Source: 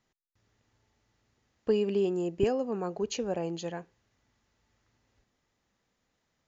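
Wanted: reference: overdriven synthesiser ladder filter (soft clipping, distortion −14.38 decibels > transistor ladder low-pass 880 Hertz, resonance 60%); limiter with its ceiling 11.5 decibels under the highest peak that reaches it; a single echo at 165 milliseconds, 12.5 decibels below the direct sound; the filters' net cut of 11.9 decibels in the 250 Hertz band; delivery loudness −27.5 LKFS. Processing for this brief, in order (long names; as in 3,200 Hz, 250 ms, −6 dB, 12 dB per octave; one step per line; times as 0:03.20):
parametric band 250 Hz −3.5 dB
brickwall limiter −24.5 dBFS
single-tap delay 165 ms −12.5 dB
soft clipping −30 dBFS
transistor ladder low-pass 880 Hz, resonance 60%
level +17.5 dB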